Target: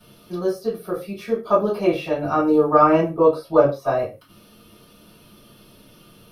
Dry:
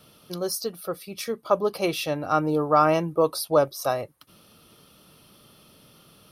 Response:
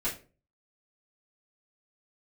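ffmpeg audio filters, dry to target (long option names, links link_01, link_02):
-filter_complex "[0:a]acrossover=split=2600[link_01][link_02];[link_02]acompressor=threshold=-48dB:ratio=4:attack=1:release=60[link_03];[link_01][link_03]amix=inputs=2:normalize=0,asettb=1/sr,asplit=3[link_04][link_05][link_06];[link_04]atrim=end=3.094[link_07];[link_05]atrim=start=3.09:end=3.99,asetpts=PTS-STARTPTS,afade=type=in:duration=0.004:curve=qsin,afade=type=out:start_time=0.896:duration=0.004:curve=qsin,highshelf=frequency=5500:gain=-6.5[link_08];[link_06]atrim=start=3.986[link_09];[link_07][link_08]acrossfade=duration=0.004:curve1=hsin:curve2=qsin[link_10];[link_10][link_09]acrossfade=duration=0.004:curve1=qsin:curve2=hsin[link_11];[1:a]atrim=start_sample=2205,afade=type=out:start_time=0.21:duration=0.01,atrim=end_sample=9702[link_12];[link_11][link_12]afir=irnorm=-1:irlink=0,volume=-1.5dB"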